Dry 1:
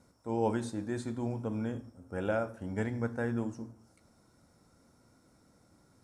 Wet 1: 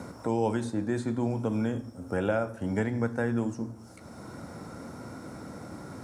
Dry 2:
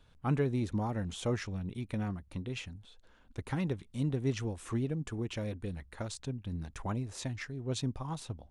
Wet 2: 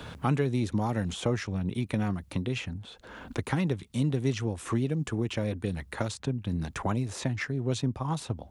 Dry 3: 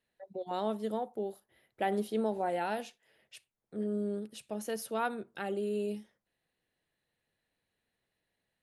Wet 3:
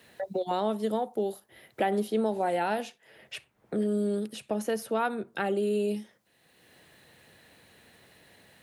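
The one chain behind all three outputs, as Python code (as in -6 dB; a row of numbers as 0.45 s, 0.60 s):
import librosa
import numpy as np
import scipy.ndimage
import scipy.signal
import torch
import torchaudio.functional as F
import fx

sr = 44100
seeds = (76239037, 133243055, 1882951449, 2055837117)

y = scipy.signal.sosfilt(scipy.signal.butter(2, 70.0, 'highpass', fs=sr, output='sos'), x)
y = fx.band_squash(y, sr, depth_pct=70)
y = F.gain(torch.from_numpy(y), 5.5).numpy()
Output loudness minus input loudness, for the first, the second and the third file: +5.0 LU, +5.5 LU, +5.5 LU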